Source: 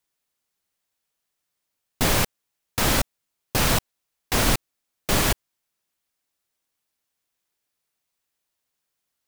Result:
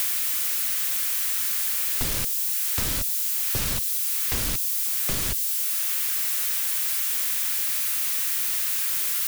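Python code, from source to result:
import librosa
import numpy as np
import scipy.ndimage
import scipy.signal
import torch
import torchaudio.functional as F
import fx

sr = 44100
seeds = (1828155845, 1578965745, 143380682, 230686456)

y = x + 0.5 * 10.0 ** (-16.0 / 20.0) * np.diff(np.sign(x), prepend=np.sign(x[:1]))
y = fx.peak_eq(y, sr, hz=780.0, db=-6.0, octaves=0.88)
y = fx.band_squash(y, sr, depth_pct=100)
y = y * 10.0 ** (-6.0 / 20.0)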